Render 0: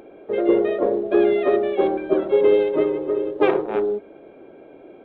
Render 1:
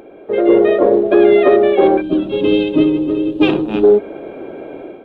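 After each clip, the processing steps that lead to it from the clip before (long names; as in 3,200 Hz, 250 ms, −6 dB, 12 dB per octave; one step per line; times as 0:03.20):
gain on a spectral selection 0:02.01–0:03.84, 340–2,400 Hz −15 dB
automatic gain control gain up to 10 dB
boost into a limiter +6 dB
level −1 dB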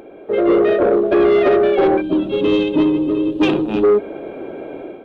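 soft clipping −8 dBFS, distortion −14 dB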